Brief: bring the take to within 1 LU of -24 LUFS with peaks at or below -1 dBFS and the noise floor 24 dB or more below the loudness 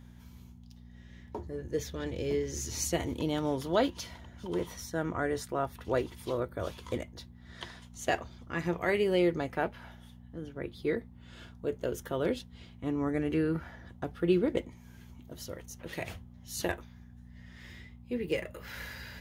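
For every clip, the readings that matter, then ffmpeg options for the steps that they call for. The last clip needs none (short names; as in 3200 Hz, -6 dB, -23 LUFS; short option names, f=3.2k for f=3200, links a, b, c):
hum 60 Hz; harmonics up to 240 Hz; hum level -50 dBFS; loudness -33.5 LUFS; peak -13.5 dBFS; loudness target -24.0 LUFS
-> -af "bandreject=f=60:t=h:w=4,bandreject=f=120:t=h:w=4,bandreject=f=180:t=h:w=4,bandreject=f=240:t=h:w=4"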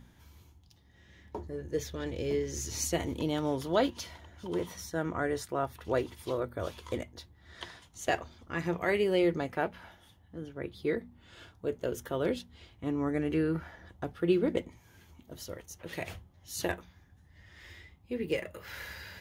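hum none; loudness -34.0 LUFS; peak -13.5 dBFS; loudness target -24.0 LUFS
-> -af "volume=10dB"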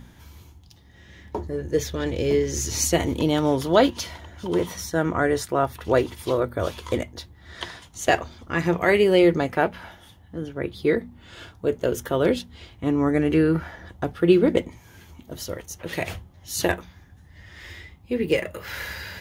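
loudness -24.0 LUFS; peak -3.5 dBFS; noise floor -51 dBFS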